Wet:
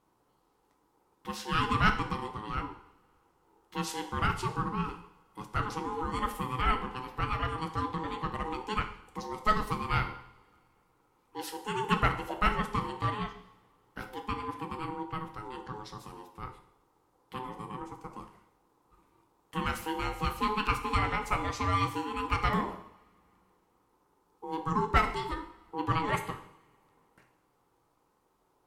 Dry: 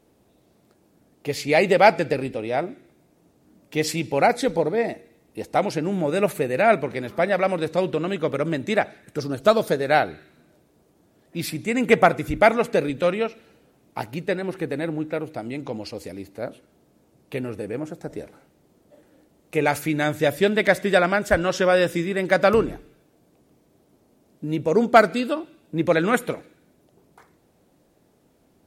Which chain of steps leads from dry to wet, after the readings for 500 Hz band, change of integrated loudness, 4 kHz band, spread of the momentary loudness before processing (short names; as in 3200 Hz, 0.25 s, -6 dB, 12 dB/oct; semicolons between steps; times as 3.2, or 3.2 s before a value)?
-19.5 dB, -10.5 dB, -7.0 dB, 16 LU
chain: ring modulator 640 Hz; two-slope reverb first 0.64 s, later 3.1 s, from -27 dB, DRR 5.5 dB; gain -8.5 dB